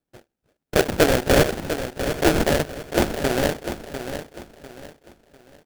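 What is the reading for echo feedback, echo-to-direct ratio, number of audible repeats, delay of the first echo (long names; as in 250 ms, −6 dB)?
32%, −9.0 dB, 3, 698 ms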